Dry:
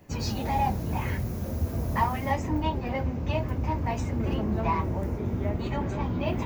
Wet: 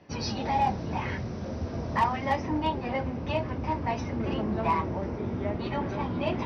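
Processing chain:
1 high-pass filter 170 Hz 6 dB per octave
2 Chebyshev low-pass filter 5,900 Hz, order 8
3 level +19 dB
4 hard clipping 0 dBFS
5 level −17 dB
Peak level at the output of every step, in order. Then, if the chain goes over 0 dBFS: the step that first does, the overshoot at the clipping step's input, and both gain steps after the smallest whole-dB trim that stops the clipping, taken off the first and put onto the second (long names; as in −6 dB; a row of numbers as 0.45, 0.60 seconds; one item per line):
−13.0, −13.5, +5.5, 0.0, −17.0 dBFS
step 3, 5.5 dB
step 3 +13 dB, step 5 −11 dB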